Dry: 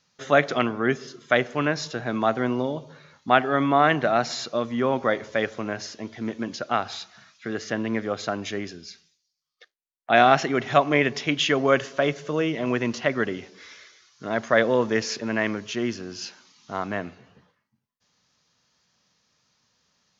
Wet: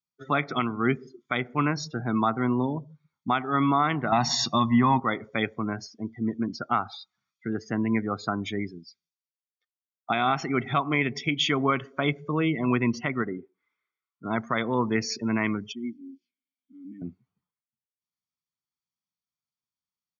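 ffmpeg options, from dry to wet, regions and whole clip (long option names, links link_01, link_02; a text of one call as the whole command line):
ffmpeg -i in.wav -filter_complex "[0:a]asettb=1/sr,asplit=3[link_01][link_02][link_03];[link_01]atrim=end=4.124[link_04];[link_02]atrim=start=4.12:end=5,asetpts=PTS-STARTPTS,afade=type=in:duration=0.004:curve=qsin,afade=type=out:start_time=0.876:duration=0.004:curve=qsin,aecho=1:1:1.1:0.72,atrim=end_sample=38808,acontrast=65[link_05];[link_03]atrim=start=4.996[link_06];[link_04][link_05]acrossfade=duration=0.004:curve1=hsin:curve2=qsin[link_07];[link_07][link_06]acrossfade=duration=0.004:curve1=qsin:curve2=hsin,asettb=1/sr,asplit=3[link_08][link_09][link_10];[link_08]atrim=end=13.224[link_11];[link_09]atrim=start=13.22:end=14.25,asetpts=PTS-STARTPTS,afade=type=in:duration=0.004:curve=qsin,afade=type=out:start_time=1.026:duration=0.004:curve=qsin,lowpass=1800,lowshelf=frequency=160:gain=-8.5[link_12];[link_10]atrim=start=14.246[link_13];[link_11][link_12]acrossfade=duration=0.004:curve1=hsin:curve2=qsin[link_14];[link_14][link_13]acrossfade=duration=0.004:curve1=qsin:curve2=hsin,asettb=1/sr,asplit=3[link_15][link_16][link_17];[link_15]atrim=end=15.724[link_18];[link_16]atrim=start=15.72:end=17.02,asetpts=PTS-STARTPTS,afade=type=in:duration=0.004:curve=qsin,afade=type=out:start_time=1.296:duration=0.004:curve=qsin,asplit=3[link_19][link_20][link_21];[link_19]bandpass=frequency=270:width_type=q:width=8,volume=0dB[link_22];[link_20]bandpass=frequency=2290:width_type=q:width=8,volume=-6dB[link_23];[link_21]bandpass=frequency=3010:width_type=q:width=8,volume=-9dB[link_24];[link_22][link_23][link_24]amix=inputs=3:normalize=0,acrusher=bits=4:mode=log:mix=0:aa=0.000001[link_25];[link_17]atrim=start=17.016[link_26];[link_18][link_25]acrossfade=duration=0.004:curve1=hsin:curve2=qsin[link_27];[link_27][link_26]acrossfade=duration=0.004:curve1=qsin:curve2=hsin,afftdn=noise_reduction=32:noise_floor=-33,aecho=1:1:0.9:0.68,alimiter=limit=-12dB:level=0:latency=1:release=323" out.wav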